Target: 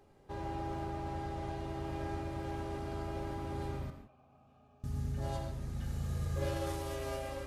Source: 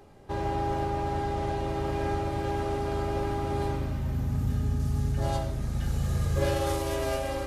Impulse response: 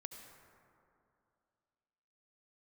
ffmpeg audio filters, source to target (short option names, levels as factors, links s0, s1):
-filter_complex "[0:a]asettb=1/sr,asplit=3[s0][s1][s2];[s0]atrim=end=3.904[s3];[s1]atrim=start=3.9:end=4.84,asetpts=PTS-STARTPTS,afade=t=in:d=0.004:c=qsin,afade=t=out:st=0.936:d=0.004:c=qsin,asplit=3[s4][s5][s6];[s4]bandpass=f=730:t=q:w=8,volume=1[s7];[s5]bandpass=f=1090:t=q:w=8,volume=0.501[s8];[s6]bandpass=f=2440:t=q:w=8,volume=0.355[s9];[s7][s8][s9]amix=inputs=3:normalize=0[s10];[s2]atrim=start=4.836[s11];[s3][s10]acrossfade=d=0.004:c1=hsin:c2=qsin[s12];[s12][s11]acrossfade=d=0.004:c1=qsin:c2=hsin[s13];[1:a]atrim=start_sample=2205,afade=t=out:st=0.23:d=0.01,atrim=end_sample=10584[s14];[s13][s14]afir=irnorm=-1:irlink=0,volume=0.596"